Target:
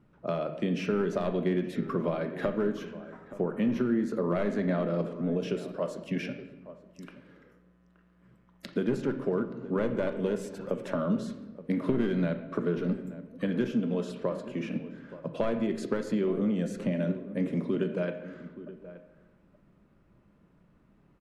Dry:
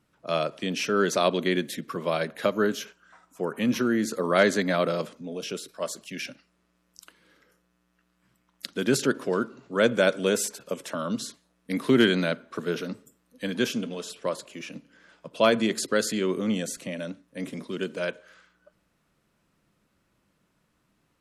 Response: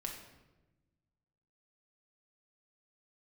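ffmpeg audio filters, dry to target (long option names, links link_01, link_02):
-filter_complex "[0:a]lowpass=frequency=3700:poles=1,aeval=exprs='clip(val(0),-1,0.119)':channel_layout=same,acompressor=threshold=-33dB:ratio=6,tiltshelf=frequency=710:gain=4.5,asplit=2[link_01][link_02];[link_02]adelay=874.6,volume=-15dB,highshelf=frequency=4000:gain=-19.7[link_03];[link_01][link_03]amix=inputs=2:normalize=0,asplit=2[link_04][link_05];[1:a]atrim=start_sample=2205,lowpass=3000[link_06];[link_05][link_06]afir=irnorm=-1:irlink=0,volume=2dB[link_07];[link_04][link_07]amix=inputs=2:normalize=0,volume=-1dB"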